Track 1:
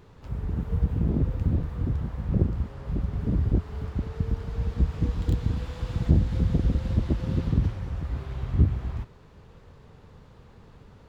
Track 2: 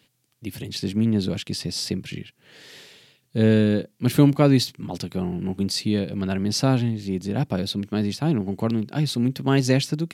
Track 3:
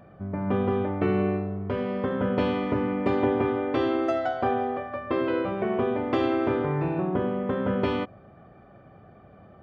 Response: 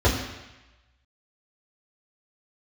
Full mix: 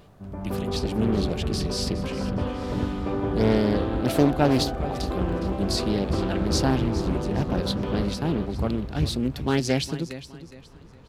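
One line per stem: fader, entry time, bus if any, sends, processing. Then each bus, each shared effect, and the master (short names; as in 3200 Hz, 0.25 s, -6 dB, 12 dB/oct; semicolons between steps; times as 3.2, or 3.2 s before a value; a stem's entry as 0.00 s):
-0.5 dB, 0.00 s, no send, echo send -7.5 dB, auto duck -9 dB, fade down 0.35 s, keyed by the second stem
-2.0 dB, 0.00 s, no send, echo send -14 dB, low shelf 130 Hz -7 dB
-1.0 dB, 0.00 s, no send, echo send -3.5 dB, bell 2100 Hz -7.5 dB 0.62 oct; flange 0.7 Hz, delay 3.3 ms, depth 9.2 ms, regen -67%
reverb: off
echo: feedback echo 0.413 s, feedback 32%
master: Doppler distortion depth 0.43 ms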